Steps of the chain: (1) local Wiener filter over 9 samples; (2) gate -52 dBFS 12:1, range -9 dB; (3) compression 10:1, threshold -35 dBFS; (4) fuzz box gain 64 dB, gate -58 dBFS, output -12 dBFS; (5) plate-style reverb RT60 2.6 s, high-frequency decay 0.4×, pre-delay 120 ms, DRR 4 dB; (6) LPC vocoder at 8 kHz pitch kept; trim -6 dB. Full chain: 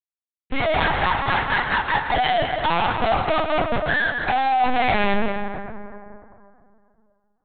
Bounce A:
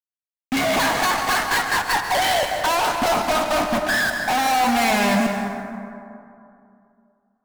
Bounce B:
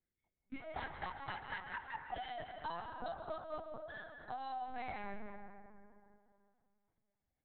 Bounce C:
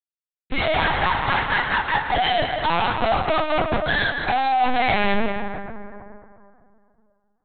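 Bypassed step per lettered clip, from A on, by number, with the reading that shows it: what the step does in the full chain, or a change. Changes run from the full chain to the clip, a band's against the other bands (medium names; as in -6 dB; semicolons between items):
6, 125 Hz band -4.5 dB; 4, distortion -2 dB; 1, 4 kHz band +2.0 dB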